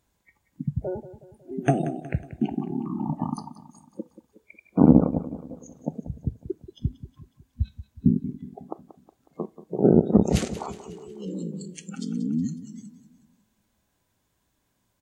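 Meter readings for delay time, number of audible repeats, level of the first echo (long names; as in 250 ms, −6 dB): 183 ms, 4, −14.5 dB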